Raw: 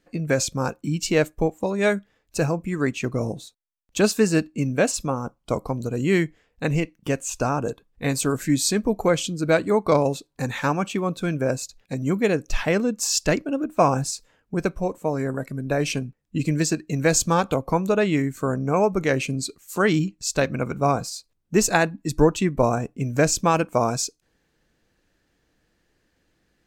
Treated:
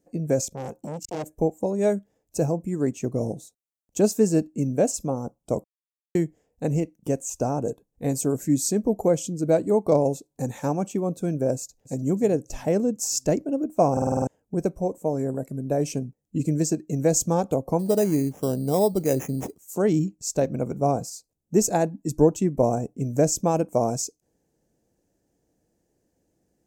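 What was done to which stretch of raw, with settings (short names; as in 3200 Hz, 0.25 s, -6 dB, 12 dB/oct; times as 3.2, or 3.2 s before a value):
0.41–1.35 core saturation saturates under 3100 Hz
5.64–6.15 mute
11.55–12.06 echo throw 0.3 s, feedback 50%, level -14 dB
13.92 stutter in place 0.05 s, 7 plays
17.79–19.58 sample-rate reducer 4400 Hz
whole clip: dynamic EQ 9500 Hz, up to -4 dB, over -45 dBFS, Q 2; HPF 95 Hz 6 dB/oct; band shelf 2200 Hz -16 dB 2.4 oct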